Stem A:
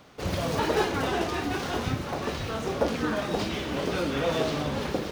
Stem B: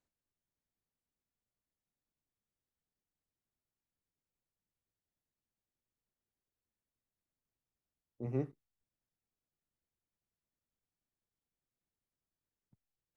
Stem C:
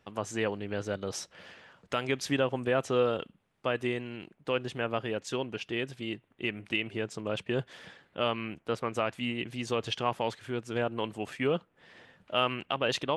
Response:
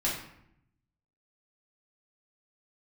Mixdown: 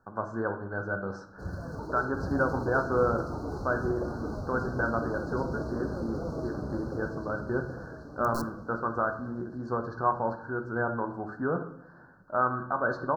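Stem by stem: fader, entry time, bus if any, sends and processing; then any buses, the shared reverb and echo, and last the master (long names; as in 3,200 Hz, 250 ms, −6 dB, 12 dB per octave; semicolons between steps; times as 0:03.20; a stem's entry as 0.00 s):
−2.5 dB, 1.20 s, no send, echo send −10 dB, spectral tilt −2.5 dB per octave; automatic ducking −12 dB, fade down 1.60 s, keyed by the third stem
+1.0 dB, 0.00 s, send −22.5 dB, no echo send, wrap-around overflow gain 28.5 dB
−3.0 dB, 0.00 s, send −9.5 dB, no echo send, low-pass with resonance 1,700 Hz, resonance Q 7.3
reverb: on, RT60 0.75 s, pre-delay 5 ms
echo: repeating echo 776 ms, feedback 58%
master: Chebyshev band-stop filter 1,500–4,200 Hz, order 5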